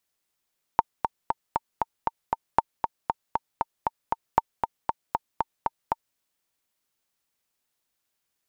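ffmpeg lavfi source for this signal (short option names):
-f lavfi -i "aevalsrc='pow(10,(-4-6*gte(mod(t,7*60/234),60/234))/20)*sin(2*PI*910*mod(t,60/234))*exp(-6.91*mod(t,60/234)/0.03)':d=5.38:s=44100"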